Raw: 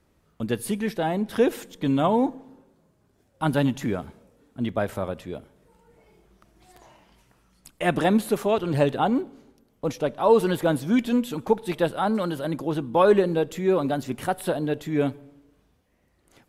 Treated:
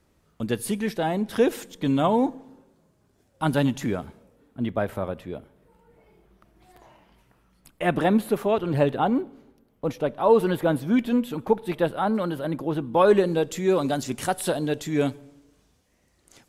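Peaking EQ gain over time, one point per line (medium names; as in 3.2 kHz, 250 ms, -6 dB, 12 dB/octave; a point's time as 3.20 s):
peaking EQ 6.7 kHz 1.6 oct
3.87 s +2.5 dB
4.61 s -7.5 dB
12.77 s -7.5 dB
13.18 s +3.5 dB
13.84 s +10.5 dB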